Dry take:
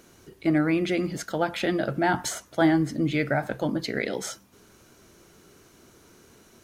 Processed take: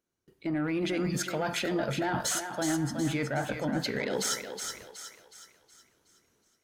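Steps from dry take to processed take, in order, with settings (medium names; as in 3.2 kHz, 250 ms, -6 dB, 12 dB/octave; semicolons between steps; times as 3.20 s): spectral noise reduction 12 dB; gate with hold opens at -53 dBFS; level rider gain up to 14 dB; peak limiter -9 dBFS, peak gain reduction 7.5 dB; reverse; compression 6:1, threshold -29 dBFS, peak gain reduction 15 dB; reverse; saturation -22.5 dBFS, distortion -21 dB; thinning echo 369 ms, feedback 45%, high-pass 490 Hz, level -6 dB; on a send at -21 dB: reverberation RT60 0.55 s, pre-delay 68 ms; on the sum: trim +1.5 dB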